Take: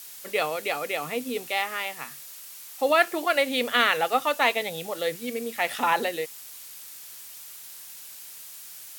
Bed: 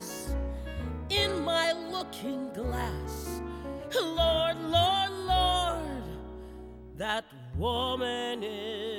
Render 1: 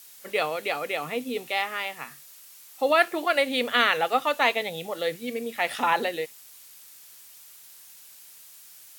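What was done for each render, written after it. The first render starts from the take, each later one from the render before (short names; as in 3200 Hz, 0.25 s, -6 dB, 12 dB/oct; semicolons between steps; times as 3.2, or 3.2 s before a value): noise print and reduce 6 dB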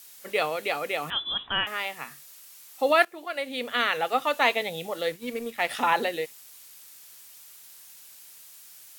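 1.1–1.67 inverted band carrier 3700 Hz; 3.05–4.43 fade in, from -15.5 dB; 5.01–5.7 G.711 law mismatch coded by A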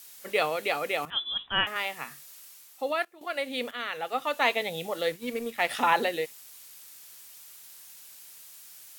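1.05–1.76 three-band expander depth 100%; 2.46–3.21 fade out quadratic, to -11 dB; 3.71–4.8 fade in, from -12 dB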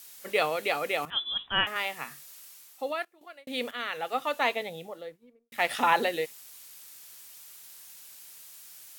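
2.68–3.47 fade out; 4.14–5.52 studio fade out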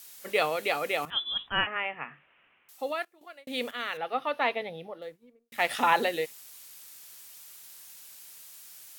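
1.49–2.69 steep low-pass 2900 Hz 72 dB/oct; 3.97–5.02 running mean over 6 samples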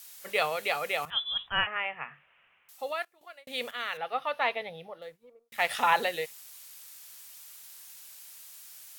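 5.24–5.49 spectral gain 260–1400 Hz +10 dB; bell 290 Hz -12 dB 0.91 oct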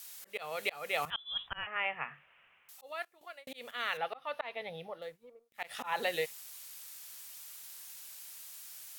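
auto swell 0.341 s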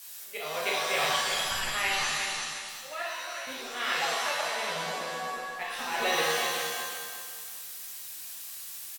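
feedback echo 0.36 s, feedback 30%, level -7 dB; shimmer reverb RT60 1.1 s, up +7 st, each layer -2 dB, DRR -4 dB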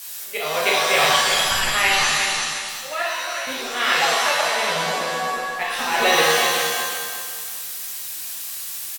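gain +10.5 dB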